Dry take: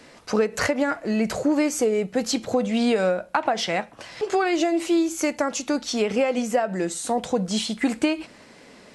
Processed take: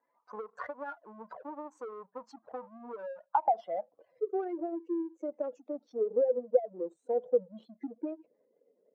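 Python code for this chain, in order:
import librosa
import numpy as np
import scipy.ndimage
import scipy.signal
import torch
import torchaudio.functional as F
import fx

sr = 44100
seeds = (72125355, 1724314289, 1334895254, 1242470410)

y = fx.spec_gate(x, sr, threshold_db=-10, keep='strong')
y = fx.power_curve(y, sr, exponent=1.4)
y = fx.filter_sweep_bandpass(y, sr, from_hz=1000.0, to_hz=480.0, start_s=3.22, end_s=3.99, q=5.9)
y = F.gain(torch.from_numpy(y), 3.5).numpy()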